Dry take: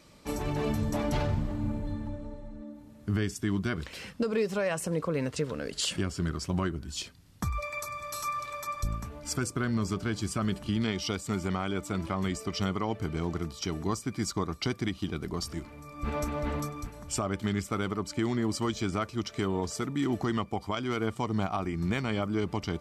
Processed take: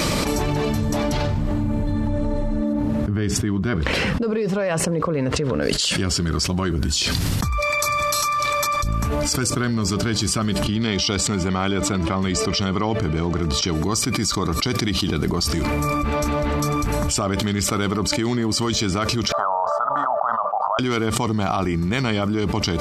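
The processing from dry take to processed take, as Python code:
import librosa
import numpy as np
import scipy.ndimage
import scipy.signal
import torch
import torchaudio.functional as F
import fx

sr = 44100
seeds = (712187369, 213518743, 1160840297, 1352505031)

y = fx.lowpass(x, sr, hz=1600.0, slope=6, at=(2.72, 5.61), fade=0.02)
y = fx.air_absorb(y, sr, metres=55.0, at=(10.67, 13.75))
y = fx.ellip_bandpass(y, sr, low_hz=610.0, high_hz=1300.0, order=3, stop_db=40, at=(19.32, 20.79))
y = fx.dynamic_eq(y, sr, hz=4600.0, q=1.1, threshold_db=-50.0, ratio=4.0, max_db=6)
y = fx.env_flatten(y, sr, amount_pct=100)
y = F.gain(torch.from_numpy(y), 3.5).numpy()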